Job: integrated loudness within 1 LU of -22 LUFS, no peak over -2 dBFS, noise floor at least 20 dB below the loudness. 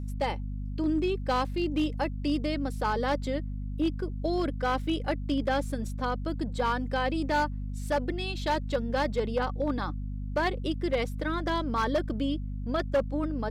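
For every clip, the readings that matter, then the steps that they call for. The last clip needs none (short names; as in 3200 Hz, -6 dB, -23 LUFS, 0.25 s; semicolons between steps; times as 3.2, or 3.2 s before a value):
clipped 0.9%; flat tops at -20.0 dBFS; hum 50 Hz; harmonics up to 250 Hz; hum level -32 dBFS; loudness -30.0 LUFS; peak -20.0 dBFS; loudness target -22.0 LUFS
-> clip repair -20 dBFS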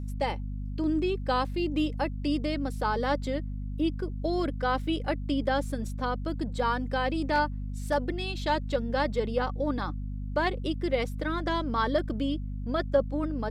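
clipped 0.0%; hum 50 Hz; harmonics up to 250 Hz; hum level -32 dBFS
-> de-hum 50 Hz, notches 5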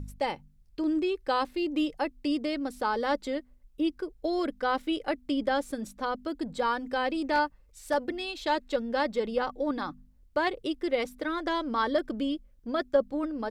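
hum none; loudness -30.5 LUFS; peak -12.5 dBFS; loudness target -22.0 LUFS
-> gain +8.5 dB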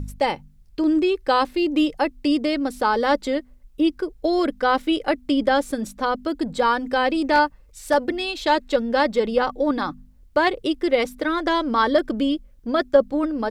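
loudness -22.0 LUFS; peak -4.0 dBFS; noise floor -51 dBFS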